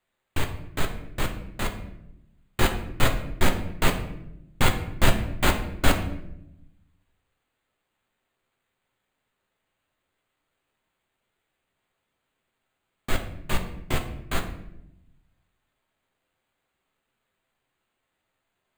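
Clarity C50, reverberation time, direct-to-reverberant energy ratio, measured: 9.5 dB, 0.80 s, 3.0 dB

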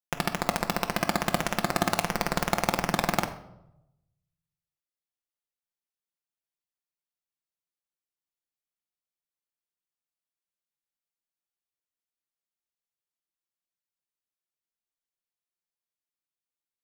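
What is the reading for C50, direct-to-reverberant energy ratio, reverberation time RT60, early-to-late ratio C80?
11.5 dB, 4.5 dB, 0.85 s, 15.0 dB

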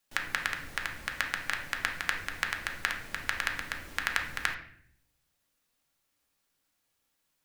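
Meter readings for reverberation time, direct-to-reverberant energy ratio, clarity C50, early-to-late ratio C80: 0.60 s, 2.0 dB, 7.5 dB, 11.5 dB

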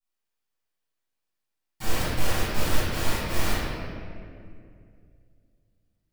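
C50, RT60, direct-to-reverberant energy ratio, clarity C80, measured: -4.0 dB, 2.3 s, -15.0 dB, -1.5 dB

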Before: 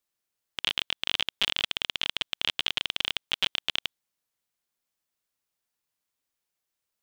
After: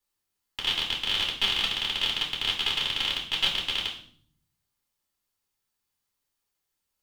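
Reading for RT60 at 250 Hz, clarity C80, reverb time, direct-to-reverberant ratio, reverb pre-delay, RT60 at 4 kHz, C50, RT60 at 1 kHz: 0.90 s, 11.5 dB, 0.55 s, -3.5 dB, 3 ms, 0.50 s, 7.0 dB, 0.50 s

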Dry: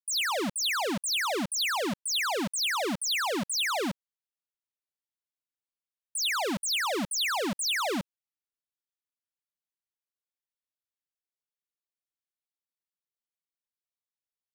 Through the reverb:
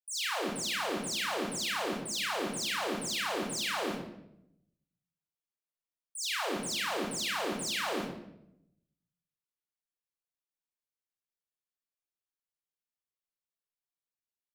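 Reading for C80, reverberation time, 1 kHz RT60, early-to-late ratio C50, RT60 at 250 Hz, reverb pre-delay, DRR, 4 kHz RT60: 6.5 dB, 0.80 s, 0.70 s, 1.5 dB, 1.1 s, 29 ms, -4.5 dB, 0.60 s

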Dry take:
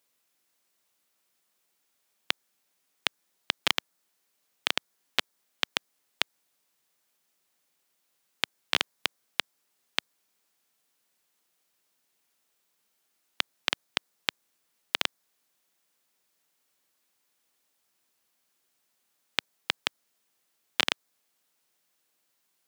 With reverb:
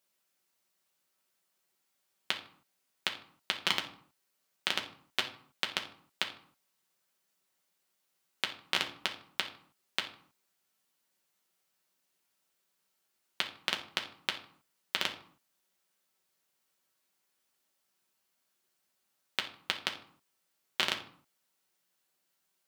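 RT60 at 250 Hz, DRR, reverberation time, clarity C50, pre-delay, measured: no reading, 1.5 dB, 0.55 s, 10.5 dB, 5 ms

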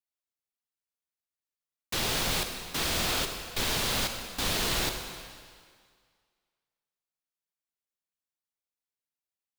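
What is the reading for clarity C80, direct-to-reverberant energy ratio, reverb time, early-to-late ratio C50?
7.0 dB, 5.5 dB, 1.9 s, 6.0 dB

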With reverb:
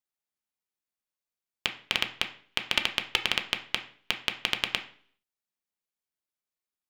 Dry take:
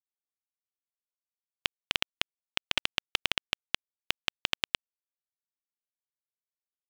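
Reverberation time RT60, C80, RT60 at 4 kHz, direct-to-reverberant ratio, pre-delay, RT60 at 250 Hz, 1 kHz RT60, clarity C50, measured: 0.50 s, 16.5 dB, 0.50 s, 4.0 dB, 3 ms, 0.60 s, 0.50 s, 12.5 dB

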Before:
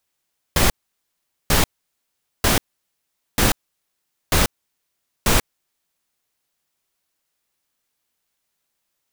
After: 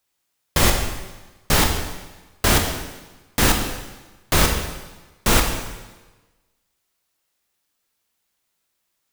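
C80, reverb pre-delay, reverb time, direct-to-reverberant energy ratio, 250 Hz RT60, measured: 7.5 dB, 7 ms, 1.2 s, 2.5 dB, 1.2 s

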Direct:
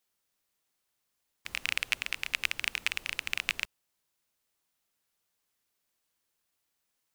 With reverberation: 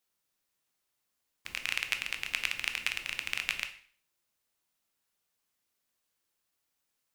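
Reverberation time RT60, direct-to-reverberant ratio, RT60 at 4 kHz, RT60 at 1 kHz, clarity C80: 0.50 s, 6.5 dB, 0.45 s, 0.50 s, 16.0 dB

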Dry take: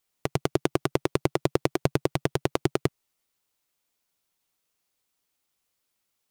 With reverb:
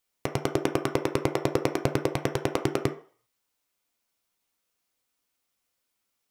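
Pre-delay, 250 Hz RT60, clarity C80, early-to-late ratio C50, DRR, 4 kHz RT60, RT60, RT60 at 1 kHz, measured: 3 ms, 0.35 s, 17.0 dB, 12.0 dB, 3.5 dB, 0.50 s, 0.45 s, 0.50 s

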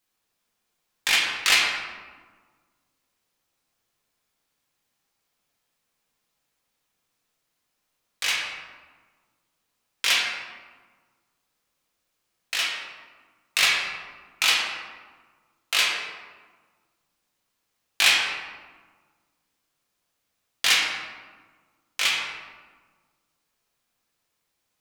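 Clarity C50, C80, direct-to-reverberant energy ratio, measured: 1.0 dB, 3.0 dB, -4.5 dB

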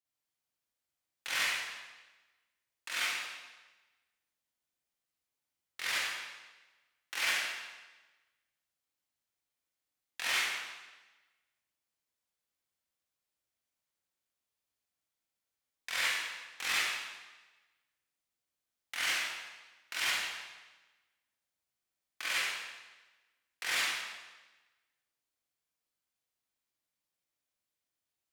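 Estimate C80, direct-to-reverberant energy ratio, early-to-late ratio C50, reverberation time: 1.0 dB, -8.5 dB, -3.0 dB, 1.2 s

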